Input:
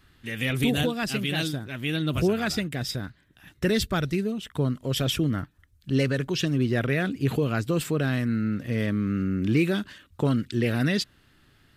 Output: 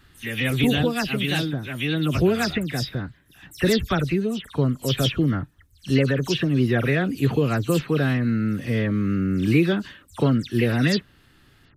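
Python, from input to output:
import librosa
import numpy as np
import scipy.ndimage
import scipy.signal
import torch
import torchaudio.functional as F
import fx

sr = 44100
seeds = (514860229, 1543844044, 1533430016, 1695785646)

y = fx.spec_delay(x, sr, highs='early', ms=108)
y = fx.dynamic_eq(y, sr, hz=7700.0, q=0.93, threshold_db=-48.0, ratio=4.0, max_db=-4)
y = y * librosa.db_to_amplitude(4.0)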